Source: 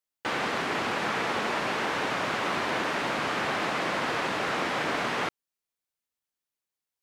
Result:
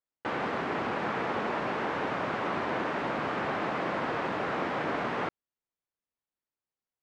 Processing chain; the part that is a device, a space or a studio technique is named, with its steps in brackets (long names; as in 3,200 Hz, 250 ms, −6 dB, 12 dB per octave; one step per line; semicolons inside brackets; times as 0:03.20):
through cloth (low-pass filter 8,800 Hz 12 dB per octave; high-shelf EQ 2,800 Hz −17 dB)